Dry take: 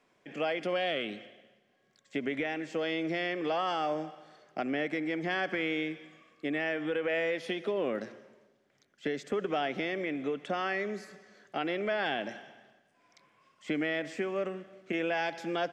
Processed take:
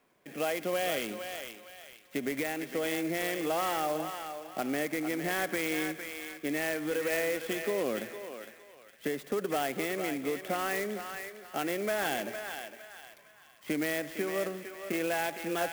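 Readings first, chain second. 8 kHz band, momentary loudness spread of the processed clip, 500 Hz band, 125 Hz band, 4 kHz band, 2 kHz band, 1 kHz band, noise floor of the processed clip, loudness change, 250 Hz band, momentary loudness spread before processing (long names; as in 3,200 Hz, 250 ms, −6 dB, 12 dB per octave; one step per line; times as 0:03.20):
can't be measured, 11 LU, 0.0 dB, 0.0 dB, 0.0 dB, 0.0 dB, +0.5 dB, −58 dBFS, 0.0 dB, 0.0 dB, 9 LU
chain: on a send: feedback echo with a high-pass in the loop 458 ms, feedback 38%, high-pass 740 Hz, level −6 dB
on the sum: converter with an unsteady clock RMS 0.04 ms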